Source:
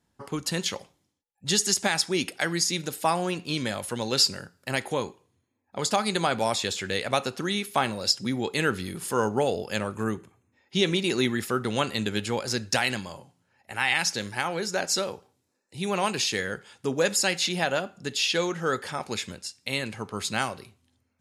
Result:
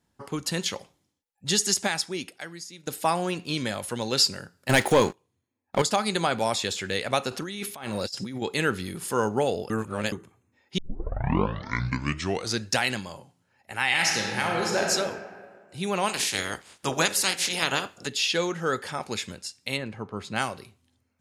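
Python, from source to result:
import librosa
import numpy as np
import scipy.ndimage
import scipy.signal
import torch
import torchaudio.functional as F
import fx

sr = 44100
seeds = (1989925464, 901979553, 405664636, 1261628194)

y = fx.leveller(x, sr, passes=3, at=(4.69, 5.82))
y = fx.over_compress(y, sr, threshold_db=-34.0, ratio=-1.0, at=(7.31, 8.42))
y = fx.reverb_throw(y, sr, start_s=13.88, length_s=1.02, rt60_s=1.8, drr_db=-0.5)
y = fx.spec_clip(y, sr, under_db=20, at=(16.08, 18.06), fade=0.02)
y = fx.lowpass(y, sr, hz=1200.0, slope=6, at=(19.76, 20.35), fade=0.02)
y = fx.edit(y, sr, fx.fade_out_to(start_s=1.77, length_s=1.1, curve='qua', floor_db=-17.5),
    fx.reverse_span(start_s=9.7, length_s=0.42),
    fx.tape_start(start_s=10.78, length_s=1.86), tone=tone)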